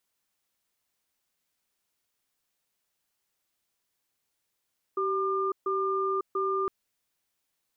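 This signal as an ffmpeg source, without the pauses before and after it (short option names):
-f lavfi -i "aevalsrc='0.0398*(sin(2*PI*386*t)+sin(2*PI*1200*t))*clip(min(mod(t,0.69),0.55-mod(t,0.69))/0.005,0,1)':d=1.71:s=44100"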